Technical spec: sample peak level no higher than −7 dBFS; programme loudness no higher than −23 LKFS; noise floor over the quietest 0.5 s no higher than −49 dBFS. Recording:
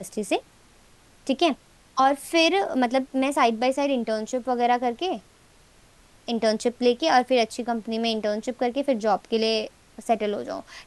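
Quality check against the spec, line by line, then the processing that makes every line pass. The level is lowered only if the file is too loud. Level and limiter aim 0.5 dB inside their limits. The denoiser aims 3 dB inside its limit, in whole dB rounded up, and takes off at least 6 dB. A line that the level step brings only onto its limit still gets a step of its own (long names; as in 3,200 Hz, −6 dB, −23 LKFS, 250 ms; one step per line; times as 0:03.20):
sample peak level −7.5 dBFS: in spec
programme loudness −24.0 LKFS: in spec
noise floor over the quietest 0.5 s −55 dBFS: in spec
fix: no processing needed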